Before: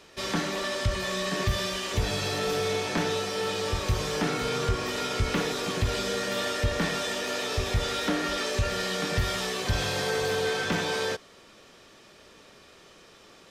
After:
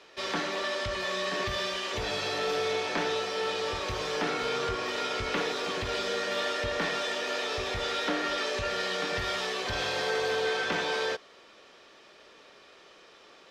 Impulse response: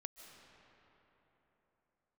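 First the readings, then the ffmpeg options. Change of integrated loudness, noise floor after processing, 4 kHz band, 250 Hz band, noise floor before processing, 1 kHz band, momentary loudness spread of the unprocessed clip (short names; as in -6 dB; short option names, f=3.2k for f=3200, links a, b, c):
-2.0 dB, -55 dBFS, -1.0 dB, -6.0 dB, -54 dBFS, 0.0 dB, 2 LU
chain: -filter_complex "[0:a]acrossover=split=310 5700:gain=0.224 1 0.2[a][b][c];[a][b][c]amix=inputs=3:normalize=0"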